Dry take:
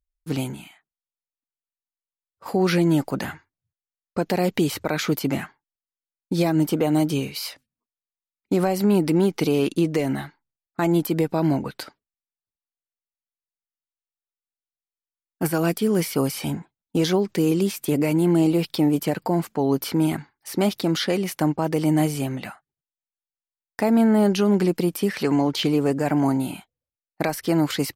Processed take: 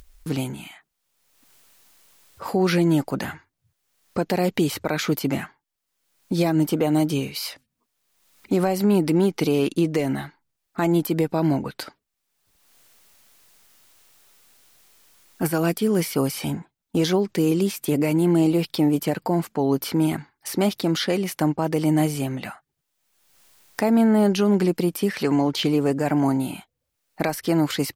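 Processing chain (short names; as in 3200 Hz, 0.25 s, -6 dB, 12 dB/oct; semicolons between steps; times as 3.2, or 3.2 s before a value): upward compressor, threshold -26 dBFS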